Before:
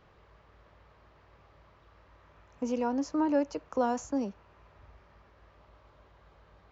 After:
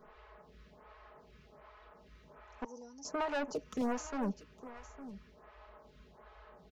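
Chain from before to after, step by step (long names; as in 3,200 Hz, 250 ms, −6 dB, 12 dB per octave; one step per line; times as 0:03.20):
0:02.64–0:03.05: pair of resonant band-passes 2,300 Hz, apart 2.7 octaves
comb filter 4.7 ms, depth 90%
hard clipping −32 dBFS, distortion −6 dB
single-tap delay 859 ms −15.5 dB
phaser with staggered stages 1.3 Hz
level +3 dB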